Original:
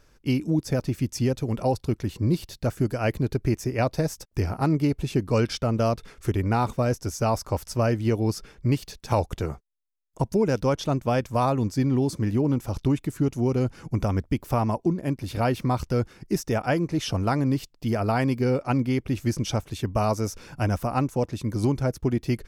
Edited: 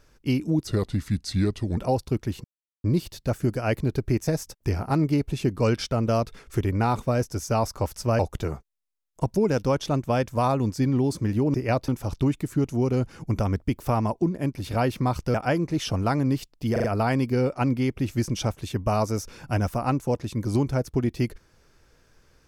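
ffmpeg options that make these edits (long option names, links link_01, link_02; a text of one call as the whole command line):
ffmpeg -i in.wav -filter_complex "[0:a]asplit=12[link_01][link_02][link_03][link_04][link_05][link_06][link_07][link_08][link_09][link_10][link_11][link_12];[link_01]atrim=end=0.674[link_13];[link_02]atrim=start=0.67:end=1.54,asetpts=PTS-STARTPTS,asetrate=34839,aresample=44100[link_14];[link_03]atrim=start=1.536:end=2.21,asetpts=PTS-STARTPTS,afade=type=out:start_time=0.67:duration=0.004:curve=hsin,apad=pad_dur=0.4[link_15];[link_04]atrim=start=2.21:end=3.642,asetpts=PTS-STARTPTS,afade=type=in:duration=0.004:curve=hsin[link_16];[link_05]atrim=start=3.978:end=7.902[link_17];[link_06]atrim=start=9.168:end=12.522[link_18];[link_07]atrim=start=3.638:end=3.982[link_19];[link_08]atrim=start=12.518:end=15.982[link_20];[link_09]atrim=start=16.548:end=17.972[link_21];[link_10]atrim=start=17.928:end=17.972[link_22];[link_11]atrim=start=17.928:end=17.972[link_23];[link_12]atrim=start=17.928[link_24];[link_13][link_14]acrossfade=duration=0.004:curve1=hsin:curve2=hsin[link_25];[link_15][link_16]concat=n=2:v=0:a=1[link_26];[link_25][link_26]acrossfade=duration=0.004:curve1=hsin:curve2=hsin[link_27];[link_27][link_17]acrossfade=duration=0.004:curve1=hsin:curve2=hsin[link_28];[link_28][link_18]acrossfade=duration=0.004:curve1=hsin:curve2=hsin[link_29];[link_29][link_19]acrossfade=duration=0.004:curve1=hsin:curve2=hsin[link_30];[link_30][link_20]acrossfade=duration=0.004:curve1=hsin:curve2=hsin[link_31];[link_31][link_21]acrossfade=duration=0.004:curve1=hsin:curve2=hsin[link_32];[link_32][link_22]acrossfade=duration=0.004:curve1=hsin:curve2=hsin[link_33];[link_33][link_23]acrossfade=duration=0.004:curve1=hsin:curve2=hsin[link_34];[link_34][link_24]acrossfade=duration=0.004:curve1=hsin:curve2=hsin" out.wav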